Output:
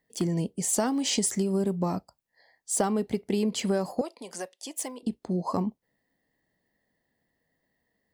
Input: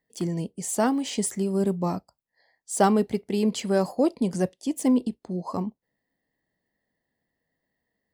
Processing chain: compression 12:1, threshold -26 dBFS, peak gain reduction 12 dB; 0.73–1.43 s: peaking EQ 5.6 kHz +5.5 dB 1.2 oct; 4.01–5.03 s: high-pass 690 Hz 12 dB/octave; trim +3.5 dB

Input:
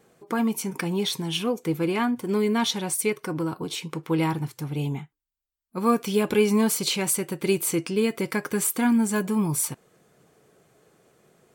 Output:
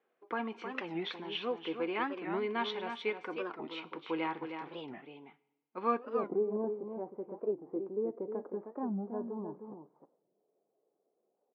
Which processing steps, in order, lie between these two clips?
inverse Chebyshev low-pass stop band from 11 kHz, stop band 70 dB, from 5.97 s stop band from 3.4 kHz; gate -49 dBFS, range -9 dB; Bessel high-pass 410 Hz, order 4; delay 312 ms -7.5 dB; two-slope reverb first 0.89 s, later 2.9 s, from -25 dB, DRR 18.5 dB; warped record 45 rpm, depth 250 cents; trim -6.5 dB

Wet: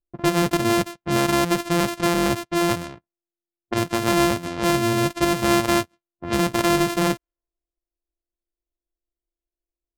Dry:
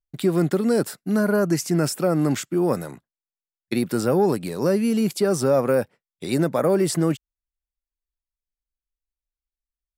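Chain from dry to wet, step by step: sorted samples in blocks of 128 samples; level-controlled noise filter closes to 520 Hz, open at -20 dBFS

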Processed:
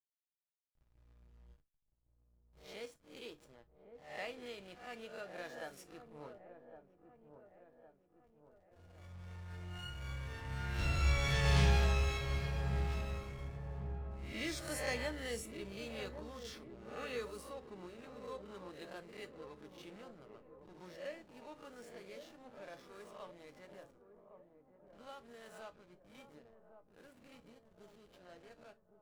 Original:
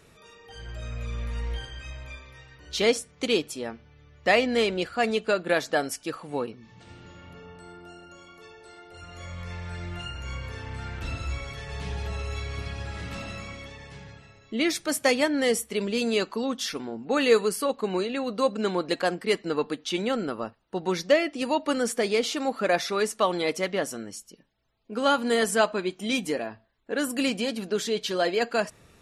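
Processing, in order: reverse spectral sustain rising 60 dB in 0.69 s; Doppler pass-by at 11.49 s, 7 m/s, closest 1.9 m; hysteresis with a dead band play -54 dBFS; peaking EQ 330 Hz -3.5 dB 1.1 oct; feedback echo behind a low-pass 1110 ms, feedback 51%, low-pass 870 Hz, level -8.5 dB; gated-style reverb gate 80 ms falling, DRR 8.5 dB; trim +4 dB

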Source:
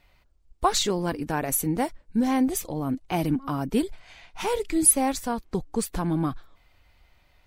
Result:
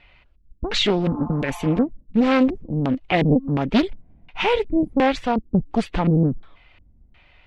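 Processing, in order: LFO low-pass square 1.4 Hz 230–2800 Hz; spectral replace 1.06–1.81 s, 610–1400 Hz before; loudspeaker Doppler distortion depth 0.71 ms; trim +6 dB

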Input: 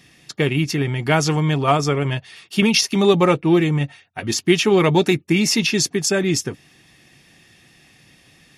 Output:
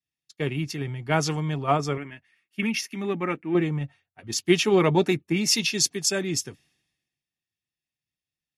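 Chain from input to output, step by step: 1.97–3.55 s: graphic EQ 125/250/500/1000/2000/4000/8000 Hz -12/+5/-9/-5/+8/-11/-6 dB; three bands expanded up and down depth 100%; trim -8 dB

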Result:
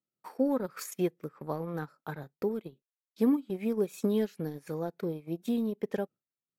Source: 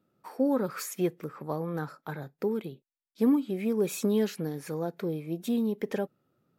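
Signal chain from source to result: transient shaper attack +2 dB, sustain -12 dB; gate with hold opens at -54 dBFS; trim -2.5 dB

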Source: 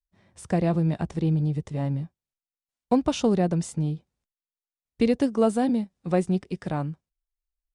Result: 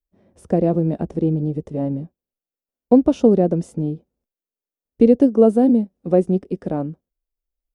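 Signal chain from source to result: graphic EQ 125/250/500/1000/2000/4000/8000 Hz -7/+6/+7/-6/-8/-9/-11 dB; trim +3.5 dB

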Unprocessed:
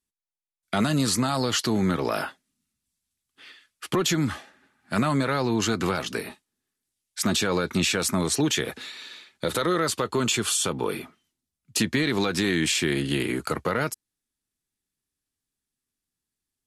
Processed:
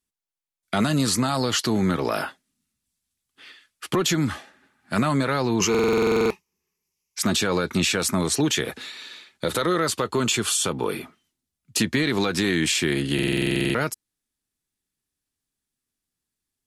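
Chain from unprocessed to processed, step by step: 5.60–7.19 s: rippled EQ curve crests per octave 0.79, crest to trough 14 dB; buffer glitch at 5.70/13.14 s, samples 2048, times 12; trim +1.5 dB

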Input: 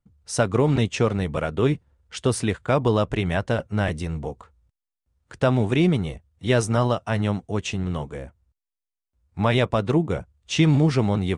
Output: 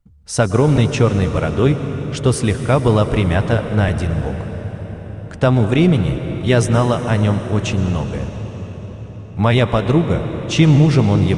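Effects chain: bass shelf 82 Hz +11 dB; on a send: reverberation RT60 5.4 s, pre-delay 105 ms, DRR 8 dB; on the sum: trim +4.5 dB

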